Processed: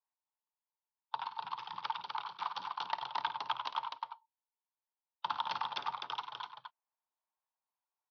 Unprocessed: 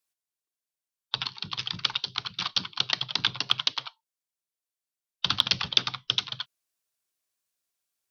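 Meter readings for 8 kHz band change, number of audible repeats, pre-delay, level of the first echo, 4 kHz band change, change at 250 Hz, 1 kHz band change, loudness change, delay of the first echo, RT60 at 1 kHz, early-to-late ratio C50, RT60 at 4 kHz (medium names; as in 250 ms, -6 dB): under -20 dB, 3, no reverb, -11.0 dB, -18.5 dB, -18.5 dB, +3.0 dB, -12.0 dB, 53 ms, no reverb, no reverb, no reverb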